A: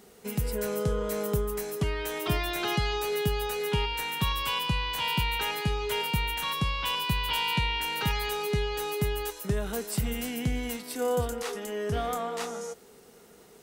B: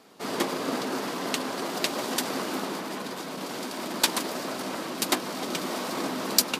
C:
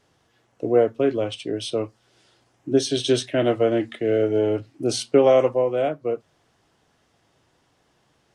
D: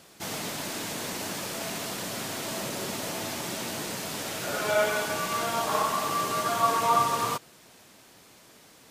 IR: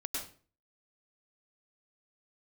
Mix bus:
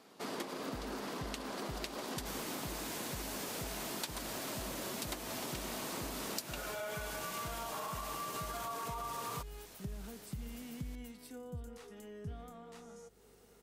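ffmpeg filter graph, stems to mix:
-filter_complex "[0:a]acrossover=split=250[a][b];[b]acompressor=threshold=-44dB:ratio=5[c];[a][c]amix=inputs=2:normalize=0,aeval=exprs='val(0)+0.000891*(sin(2*PI*50*n/s)+sin(2*PI*2*50*n/s)/2+sin(2*PI*3*50*n/s)/3+sin(2*PI*4*50*n/s)/4+sin(2*PI*5*50*n/s)/5)':c=same,adelay=350,volume=-9dB[d];[1:a]volume=-5.5dB[e];[3:a]highshelf=f=12k:g=9,alimiter=limit=-21dB:level=0:latency=1,adelay=2050,volume=-3.5dB[f];[d][e][f]amix=inputs=3:normalize=0,acompressor=threshold=-38dB:ratio=6"

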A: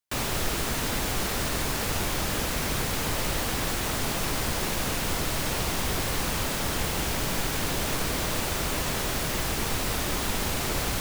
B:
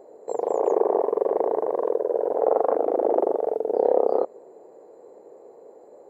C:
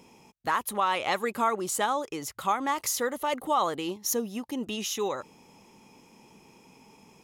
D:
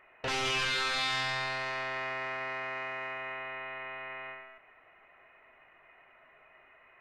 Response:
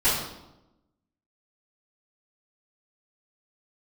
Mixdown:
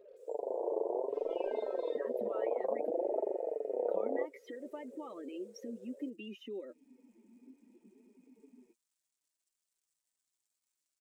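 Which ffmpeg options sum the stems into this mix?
-filter_complex "[0:a]bandpass=f=7.9k:t=q:w=3.7:csg=0,adelay=50,volume=-14.5dB[a];[1:a]equalizer=f=490:t=o:w=0.37:g=7,volume=-4dB[b];[2:a]equalizer=f=125:t=o:w=1:g=-11,equalizer=f=250:t=o:w=1:g=11,equalizer=f=500:t=o:w=1:g=9,equalizer=f=1k:t=o:w=1:g=-4,equalizer=f=2k:t=o:w=1:g=9,equalizer=f=4k:t=o:w=1:g=-4,equalizer=f=8k:t=o:w=1:g=-11,adelay=1500,volume=-2dB,asplit=3[c][d][e];[c]atrim=end=2.9,asetpts=PTS-STARTPTS,afade=t=out:st=2.896:d=0.004:c=hsin[f];[d]atrim=start=2.9:end=3.82,asetpts=PTS-STARTPTS,volume=0[g];[e]atrim=start=3.82,asetpts=PTS-STARTPTS,afade=t=in:d=0.004:c=hsin[h];[f][g][h]concat=n=3:v=0:a=1[i];[3:a]adelay=850,volume=-16dB[j];[i][j]amix=inputs=2:normalize=0,acrossover=split=330|2100|4700[k][l][m][n];[k]acompressor=threshold=-39dB:ratio=4[o];[l]acompressor=threshold=-42dB:ratio=4[p];[m]acompressor=threshold=-44dB:ratio=4[q];[n]acompressor=threshold=-50dB:ratio=4[r];[o][p][q][r]amix=inputs=4:normalize=0,alimiter=level_in=8dB:limit=-24dB:level=0:latency=1:release=144,volume=-8dB,volume=0dB[s];[a][b]amix=inputs=2:normalize=0,acrusher=bits=7:mix=0:aa=0.5,acompressor=threshold=-40dB:ratio=1.5,volume=0dB[t];[s][t]amix=inputs=2:normalize=0,afftdn=nr=21:nf=-37,aecho=1:1:3.2:0.36,flanger=delay=4.5:depth=4.8:regen=34:speed=0.62:shape=triangular"

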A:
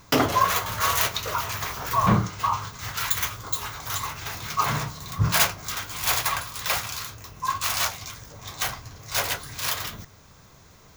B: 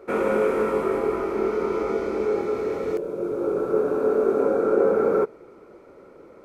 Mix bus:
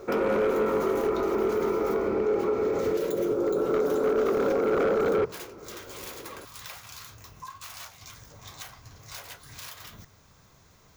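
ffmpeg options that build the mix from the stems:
-filter_complex "[0:a]acompressor=threshold=-33dB:ratio=10,volume=-6dB[a];[1:a]aeval=exprs='0.15*(abs(mod(val(0)/0.15+3,4)-2)-1)':c=same,highshelf=f=3.7k:g=-11,volume=2.5dB[b];[a][b]amix=inputs=2:normalize=0,alimiter=limit=-18.5dB:level=0:latency=1:release=72"

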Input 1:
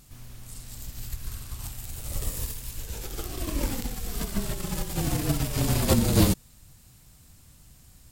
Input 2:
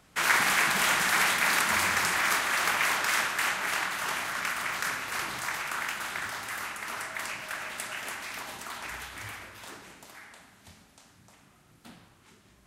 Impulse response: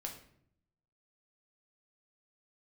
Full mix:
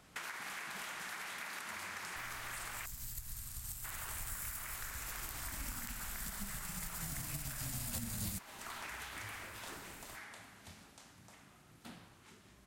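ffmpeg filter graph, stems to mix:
-filter_complex "[0:a]agate=range=-33dB:threshold=-48dB:ratio=3:detection=peak,firequalizer=gain_entry='entry(240,0);entry(360,-17);entry(680,-3);entry(7700,10)':delay=0.05:min_phase=1,adelay=2050,volume=-6dB[a];[1:a]acompressor=threshold=-35dB:ratio=6,volume=-2dB,asplit=3[b][c][d];[b]atrim=end=2.86,asetpts=PTS-STARTPTS,afade=t=out:st=2.856:d=0.004:c=hsin[e];[c]atrim=start=2.86:end=3.84,asetpts=PTS-STARTPTS,volume=0[f];[d]atrim=start=3.84,asetpts=PTS-STARTPTS,afade=t=in:d=0.004:c=hsin[g];[e][f][g]concat=n=3:v=0:a=1,asplit=2[h][i];[i]volume=-19.5dB,aecho=0:1:1152:1[j];[a][h][j]amix=inputs=3:normalize=0,acompressor=threshold=-43dB:ratio=3"

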